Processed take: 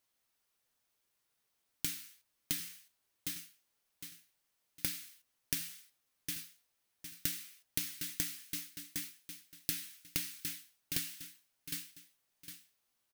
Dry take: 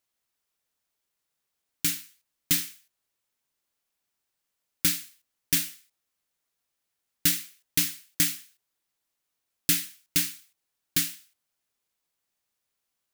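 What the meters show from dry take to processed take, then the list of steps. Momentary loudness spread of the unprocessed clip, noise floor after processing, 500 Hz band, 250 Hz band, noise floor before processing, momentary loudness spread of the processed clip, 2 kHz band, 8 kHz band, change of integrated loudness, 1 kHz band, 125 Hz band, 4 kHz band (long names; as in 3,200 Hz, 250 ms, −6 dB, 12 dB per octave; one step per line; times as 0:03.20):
8 LU, −81 dBFS, −6.0 dB, −11.5 dB, −82 dBFS, 16 LU, −10.5 dB, −11.0 dB, −13.0 dB, −9.5 dB, −10.5 dB, −10.5 dB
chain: repeating echo 758 ms, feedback 33%, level −16 dB
flanger 0.17 Hz, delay 7.3 ms, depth 2.9 ms, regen +66%
downward compressor 16 to 1, threshold −38 dBFS, peak gain reduction 17 dB
notch filter 7,200 Hz, Q 17
level +5.5 dB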